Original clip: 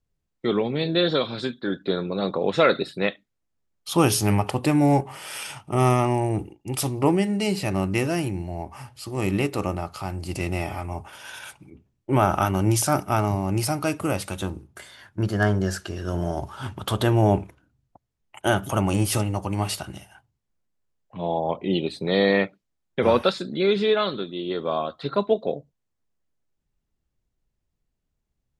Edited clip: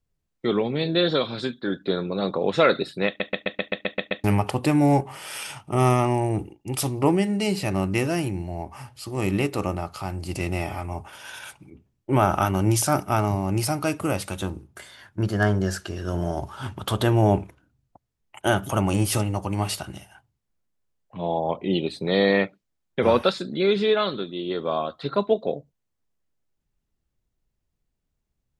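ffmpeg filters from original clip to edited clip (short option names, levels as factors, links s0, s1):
-filter_complex "[0:a]asplit=10[s0][s1][s2][s3][s4][s5][s6][s7][s8][s9];[s0]atrim=end=3.202[s10];[s1]atrim=start=3.068:end=3.202[s11];[s2]atrim=start=3.068:end=3.202[s12];[s3]atrim=start=3.068:end=3.202[s13];[s4]atrim=start=3.068:end=3.202[s14];[s5]atrim=start=3.068:end=3.202[s15];[s6]atrim=start=3.068:end=3.202[s16];[s7]atrim=start=3.068:end=3.202[s17];[s8]atrim=start=3.068:end=3.202[s18];[s9]atrim=start=4.238[s19];[s10][s11]acrossfade=d=0.004:c1=hsin:c2=hsin[s20];[s20][s12]acrossfade=d=0.004:c1=hsin:c2=hsin[s21];[s21][s13]acrossfade=d=0.004:c1=hsin:c2=hsin[s22];[s22][s14]acrossfade=d=0.004:c1=hsin:c2=hsin[s23];[s23][s15]acrossfade=d=0.004:c1=hsin:c2=hsin[s24];[s24][s16]acrossfade=d=0.004:c1=hsin:c2=hsin[s25];[s25][s17]acrossfade=d=0.004:c1=hsin:c2=hsin[s26];[s26][s18]acrossfade=d=0.004:c1=hsin:c2=hsin[s27];[s27][s19]acrossfade=d=0.004:c1=hsin:c2=hsin"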